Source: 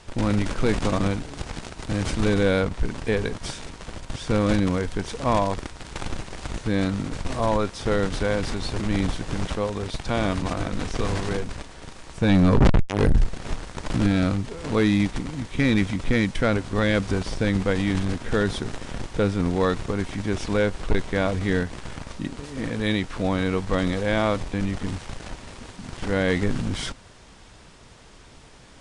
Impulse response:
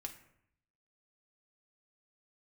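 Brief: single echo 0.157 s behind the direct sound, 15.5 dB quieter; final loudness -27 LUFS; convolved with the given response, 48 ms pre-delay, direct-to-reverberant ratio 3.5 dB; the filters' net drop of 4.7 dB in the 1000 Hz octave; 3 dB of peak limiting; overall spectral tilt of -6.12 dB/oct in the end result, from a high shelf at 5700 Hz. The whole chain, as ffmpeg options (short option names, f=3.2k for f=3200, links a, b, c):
-filter_complex "[0:a]equalizer=f=1k:t=o:g=-6,highshelf=f=5.7k:g=-5,alimiter=limit=-15dB:level=0:latency=1,aecho=1:1:157:0.168,asplit=2[a][b];[1:a]atrim=start_sample=2205,adelay=48[c];[b][c]afir=irnorm=-1:irlink=0,volume=-0.5dB[d];[a][d]amix=inputs=2:normalize=0,volume=-1.5dB"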